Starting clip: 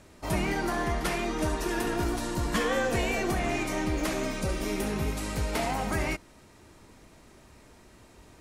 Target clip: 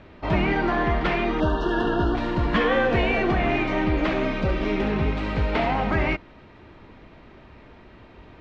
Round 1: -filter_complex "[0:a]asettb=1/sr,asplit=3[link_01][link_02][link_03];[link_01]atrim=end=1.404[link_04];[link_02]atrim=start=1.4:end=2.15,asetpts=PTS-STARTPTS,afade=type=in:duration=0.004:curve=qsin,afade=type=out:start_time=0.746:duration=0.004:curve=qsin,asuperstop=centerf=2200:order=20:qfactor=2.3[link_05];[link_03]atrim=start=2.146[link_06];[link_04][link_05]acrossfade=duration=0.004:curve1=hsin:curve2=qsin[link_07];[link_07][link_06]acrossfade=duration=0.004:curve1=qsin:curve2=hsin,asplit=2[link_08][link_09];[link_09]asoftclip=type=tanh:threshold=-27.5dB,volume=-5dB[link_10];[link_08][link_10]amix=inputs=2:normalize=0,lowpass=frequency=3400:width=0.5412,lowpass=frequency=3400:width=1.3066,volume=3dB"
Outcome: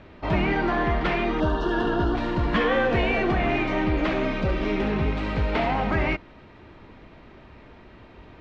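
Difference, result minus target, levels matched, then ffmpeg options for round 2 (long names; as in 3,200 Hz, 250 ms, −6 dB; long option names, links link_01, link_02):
soft clipping: distortion +12 dB
-filter_complex "[0:a]asettb=1/sr,asplit=3[link_01][link_02][link_03];[link_01]atrim=end=1.404[link_04];[link_02]atrim=start=1.4:end=2.15,asetpts=PTS-STARTPTS,afade=type=in:duration=0.004:curve=qsin,afade=type=out:start_time=0.746:duration=0.004:curve=qsin,asuperstop=centerf=2200:order=20:qfactor=2.3[link_05];[link_03]atrim=start=2.146[link_06];[link_04][link_05]acrossfade=duration=0.004:curve1=hsin:curve2=qsin[link_07];[link_07][link_06]acrossfade=duration=0.004:curve1=qsin:curve2=hsin,asplit=2[link_08][link_09];[link_09]asoftclip=type=tanh:threshold=-18.5dB,volume=-5dB[link_10];[link_08][link_10]amix=inputs=2:normalize=0,lowpass=frequency=3400:width=0.5412,lowpass=frequency=3400:width=1.3066,volume=3dB"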